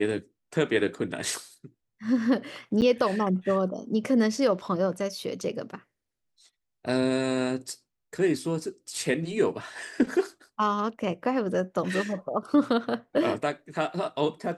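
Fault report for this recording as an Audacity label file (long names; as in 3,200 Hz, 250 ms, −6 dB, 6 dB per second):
2.810000	2.820000	drop-out 9 ms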